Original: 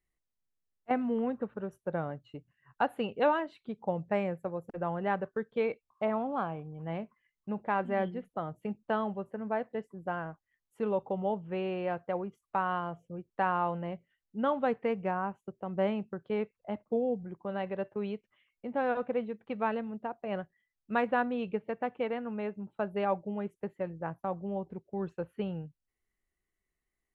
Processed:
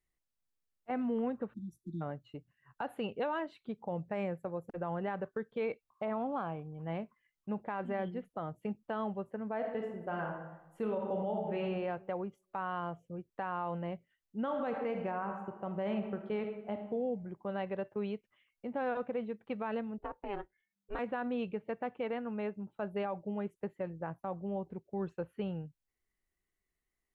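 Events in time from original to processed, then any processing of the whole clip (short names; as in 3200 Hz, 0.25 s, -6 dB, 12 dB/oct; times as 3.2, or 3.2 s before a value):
1.54–2.02 spectral delete 360–3300 Hz
9.56–11.62 reverb throw, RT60 1 s, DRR 1.5 dB
14.42–16.81 reverb throw, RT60 1.1 s, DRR 6 dB
19.98–20.99 ring modulator 200 Hz
whole clip: limiter -25.5 dBFS; gain -1.5 dB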